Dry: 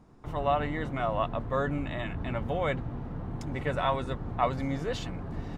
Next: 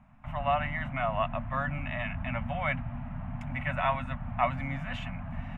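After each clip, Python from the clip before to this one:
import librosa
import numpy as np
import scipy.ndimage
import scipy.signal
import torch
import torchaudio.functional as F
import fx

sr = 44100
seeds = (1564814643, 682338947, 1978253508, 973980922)

y = scipy.signal.sosfilt(scipy.signal.ellip(3, 1.0, 40, [250.0, 610.0], 'bandstop', fs=sr, output='sos'), x)
y = fx.high_shelf_res(y, sr, hz=3400.0, db=-10.5, q=3.0)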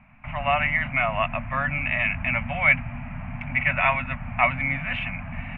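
y = fx.lowpass_res(x, sr, hz=2400.0, q=5.6)
y = y * 10.0 ** (3.0 / 20.0)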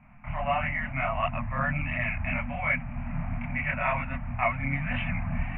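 y = fx.air_absorb(x, sr, metres=490.0)
y = fx.chorus_voices(y, sr, voices=2, hz=1.5, base_ms=27, depth_ms=3.0, mix_pct=55)
y = fx.rider(y, sr, range_db=4, speed_s=0.5)
y = y * 10.0 ** (1.5 / 20.0)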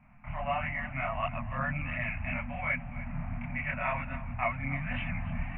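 y = x + 10.0 ** (-16.0 / 20.0) * np.pad(x, (int(289 * sr / 1000.0), 0))[:len(x)]
y = y * 10.0 ** (-4.5 / 20.0)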